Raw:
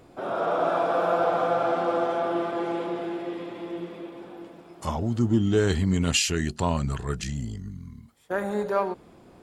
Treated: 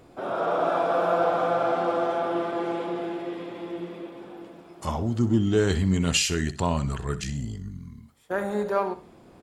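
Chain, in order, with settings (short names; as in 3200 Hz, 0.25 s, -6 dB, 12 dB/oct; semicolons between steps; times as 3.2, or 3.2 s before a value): feedback echo 63 ms, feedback 27%, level -14.5 dB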